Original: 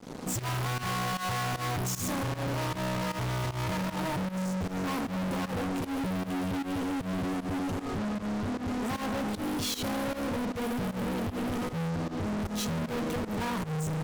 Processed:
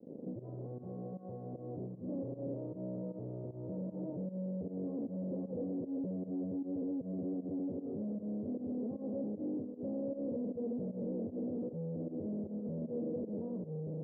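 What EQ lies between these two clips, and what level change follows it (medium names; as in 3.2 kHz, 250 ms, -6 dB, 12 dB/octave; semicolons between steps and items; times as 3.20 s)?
high-pass 210 Hz 12 dB/octave; Chebyshev low-pass 550 Hz, order 4; -3.0 dB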